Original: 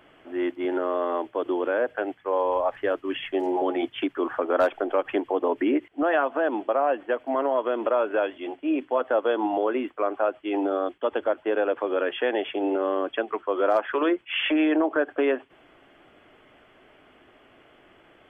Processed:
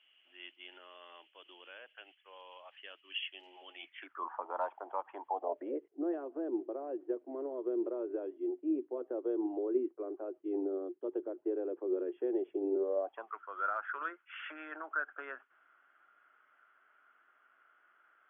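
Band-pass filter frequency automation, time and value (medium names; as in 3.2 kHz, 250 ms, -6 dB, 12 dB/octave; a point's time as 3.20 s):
band-pass filter, Q 8.3
3.80 s 2.9 kHz
4.27 s 930 Hz
5.23 s 930 Hz
6.00 s 360 Hz
12.78 s 360 Hz
13.35 s 1.4 kHz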